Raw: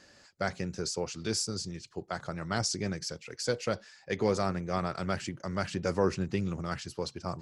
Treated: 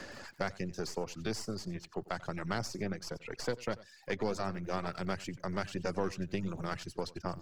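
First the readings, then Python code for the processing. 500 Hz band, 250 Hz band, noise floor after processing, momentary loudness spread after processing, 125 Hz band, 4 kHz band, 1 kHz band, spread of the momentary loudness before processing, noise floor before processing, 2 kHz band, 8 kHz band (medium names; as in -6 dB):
-4.5 dB, -4.0 dB, -59 dBFS, 5 LU, -5.0 dB, -7.0 dB, -3.5 dB, 9 LU, -59 dBFS, -3.0 dB, -10.0 dB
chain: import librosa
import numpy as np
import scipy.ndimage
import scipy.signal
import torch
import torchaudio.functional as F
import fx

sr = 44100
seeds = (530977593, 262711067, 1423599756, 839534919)

y = np.where(x < 0.0, 10.0 ** (-7.0 / 20.0) * x, x)
y = fx.high_shelf(y, sr, hz=5200.0, db=-5.0)
y = y + 10.0 ** (-10.5 / 20.0) * np.pad(y, (int(91 * sr / 1000.0), 0))[:len(y)]
y = fx.dmg_crackle(y, sr, seeds[0], per_s=62.0, level_db=-57.0)
y = fx.dereverb_blind(y, sr, rt60_s=0.55)
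y = fx.band_squash(y, sr, depth_pct=70)
y = y * 10.0 ** (-1.5 / 20.0)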